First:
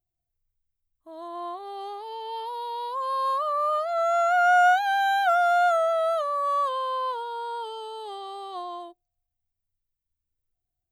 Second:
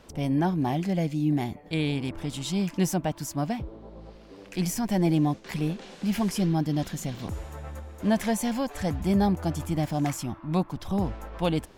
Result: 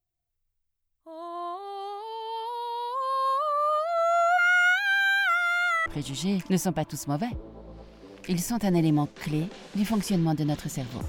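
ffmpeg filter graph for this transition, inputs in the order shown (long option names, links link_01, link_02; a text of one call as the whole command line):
ffmpeg -i cue0.wav -i cue1.wav -filter_complex "[0:a]asplit=3[link_01][link_02][link_03];[link_01]afade=type=out:start_time=4.37:duration=0.02[link_04];[link_02]highpass=frequency=1900:width_type=q:width=13,afade=type=in:start_time=4.37:duration=0.02,afade=type=out:start_time=5.86:duration=0.02[link_05];[link_03]afade=type=in:start_time=5.86:duration=0.02[link_06];[link_04][link_05][link_06]amix=inputs=3:normalize=0,apad=whole_dur=11.08,atrim=end=11.08,atrim=end=5.862[link_07];[1:a]atrim=start=2.138:end=7.36[link_08];[link_07][link_08]acrossfade=duration=0.004:curve1=hsin:curve2=hsin" out.wav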